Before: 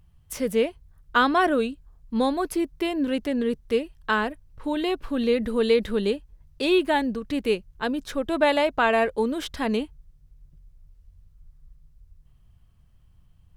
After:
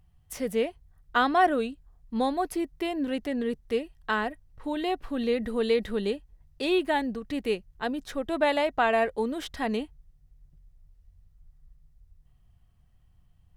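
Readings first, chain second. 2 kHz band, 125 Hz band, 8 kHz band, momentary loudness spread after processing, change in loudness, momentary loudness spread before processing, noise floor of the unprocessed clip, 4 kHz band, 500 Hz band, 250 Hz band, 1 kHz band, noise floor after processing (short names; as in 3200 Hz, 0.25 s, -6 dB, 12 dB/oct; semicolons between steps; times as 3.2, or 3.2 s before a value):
-4.0 dB, n/a, -4.5 dB, 9 LU, -3.5 dB, 9 LU, -57 dBFS, -4.5 dB, -4.0 dB, -4.5 dB, -1.5 dB, -62 dBFS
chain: small resonant body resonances 740/1900 Hz, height 9 dB; gain -4.5 dB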